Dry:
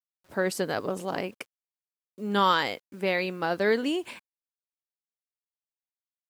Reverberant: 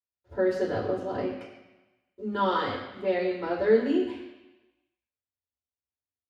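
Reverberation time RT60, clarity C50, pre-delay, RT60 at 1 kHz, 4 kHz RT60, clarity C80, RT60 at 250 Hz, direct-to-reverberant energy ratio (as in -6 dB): 1.0 s, 5.5 dB, 3 ms, 1.1 s, 1.1 s, 7.0 dB, 0.95 s, -7.5 dB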